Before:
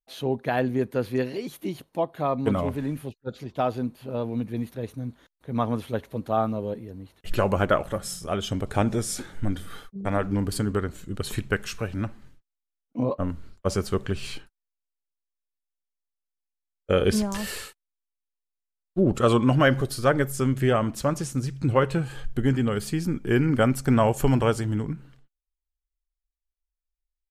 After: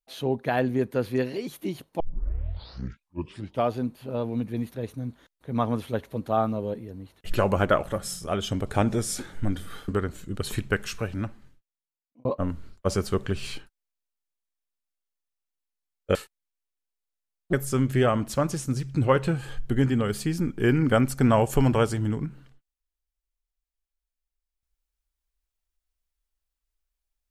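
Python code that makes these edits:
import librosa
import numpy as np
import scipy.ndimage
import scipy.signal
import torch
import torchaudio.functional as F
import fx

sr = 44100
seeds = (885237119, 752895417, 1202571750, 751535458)

y = fx.edit(x, sr, fx.tape_start(start_s=2.0, length_s=1.74),
    fx.cut(start_s=9.88, length_s=0.8),
    fx.fade_out_span(start_s=11.82, length_s=1.23),
    fx.cut(start_s=16.95, length_s=0.66),
    fx.cut(start_s=18.99, length_s=1.21), tone=tone)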